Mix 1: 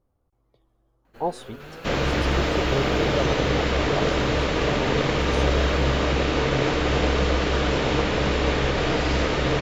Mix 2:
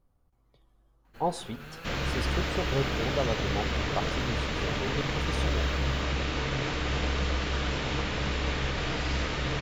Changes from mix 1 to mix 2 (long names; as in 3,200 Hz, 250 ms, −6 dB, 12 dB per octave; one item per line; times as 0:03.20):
speech: send on
second sound −5.0 dB
master: add parametric band 460 Hz −7.5 dB 2 octaves